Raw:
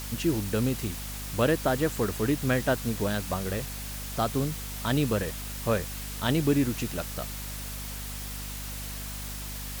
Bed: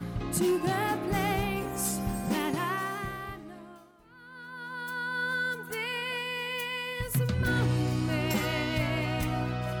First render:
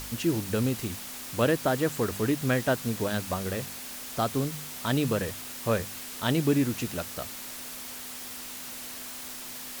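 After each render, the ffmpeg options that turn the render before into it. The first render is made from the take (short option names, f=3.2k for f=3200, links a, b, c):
-af "bandreject=f=50:t=h:w=4,bandreject=f=100:t=h:w=4,bandreject=f=150:t=h:w=4,bandreject=f=200:t=h:w=4"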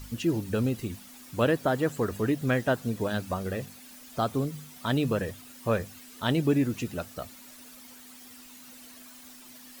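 -af "afftdn=nr=12:nf=-40"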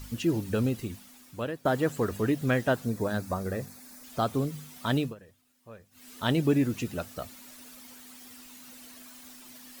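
-filter_complex "[0:a]asettb=1/sr,asplit=3[a][b][c];[a]atrim=end=2.854[d];[b]atrim=start=2.85:end=4.04,asetpts=PTS-STARTPTS,afade=t=in:d=0.004:c=qsin,afade=t=out:st=1.186:d=0.004:c=qsin,equalizer=f=3k:t=o:w=0.5:g=-12.5[e];[c]atrim=start=4.036[f];[d][e]acrossfade=d=0.004:c1=hsin:c2=qsin[g];[g][f]acrossfade=d=0.004:c1=qsin:c2=hsin,asplit=4[h][i][j][k];[h]atrim=end=1.65,asetpts=PTS-STARTPTS,afade=t=out:st=0.66:d=0.99:silence=0.188365[l];[i]atrim=start=1.65:end=5.15,asetpts=PTS-STARTPTS,afade=t=in:d=0.004:c=hsin:silence=0.188365,afade=t=out:st=3.32:d=0.18:silence=0.0841395[m];[j]atrim=start=5.15:end=5.91,asetpts=PTS-STARTPTS,volume=-21.5dB[n];[k]atrim=start=5.91,asetpts=PTS-STARTPTS,afade=t=in:d=0.18:silence=0.0841395[o];[l][m][n][o]concat=n=4:v=0:a=1"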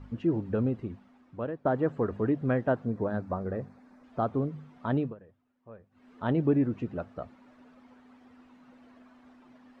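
-af "lowpass=1.2k,lowshelf=f=69:g=-6.5"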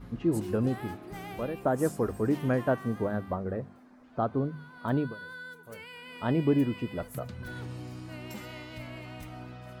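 -filter_complex "[1:a]volume=-13dB[a];[0:a][a]amix=inputs=2:normalize=0"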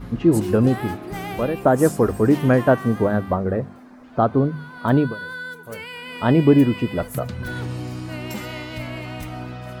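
-af "volume=11dB"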